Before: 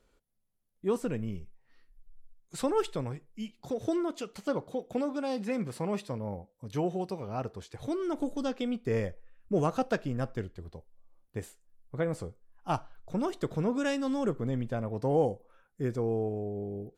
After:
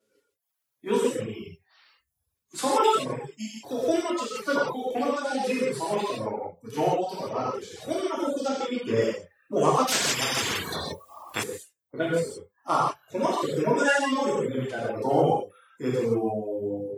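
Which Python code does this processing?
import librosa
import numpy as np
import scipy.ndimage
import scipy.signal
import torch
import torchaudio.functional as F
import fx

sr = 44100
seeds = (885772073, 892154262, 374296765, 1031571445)

p1 = fx.spec_quant(x, sr, step_db=30)
p2 = fx.level_steps(p1, sr, step_db=10)
p3 = p1 + (p2 * 10.0 ** (1.0 / 20.0))
p4 = scipy.signal.sosfilt(scipy.signal.butter(4, 87.0, 'highpass', fs=sr, output='sos'), p3)
p5 = fx.rev_gated(p4, sr, seeds[0], gate_ms=200, shape='flat', drr_db=-7.5)
p6 = fx.dereverb_blind(p5, sr, rt60_s=0.69)
p7 = fx.high_shelf(p6, sr, hz=9200.0, db=-10.5, at=(8.48, 9.02))
p8 = fx.noise_reduce_blind(p7, sr, reduce_db=8)
p9 = fx.low_shelf(p8, sr, hz=370.0, db=-11.5)
y = fx.spectral_comp(p9, sr, ratio=10.0, at=(9.87, 11.42), fade=0.02)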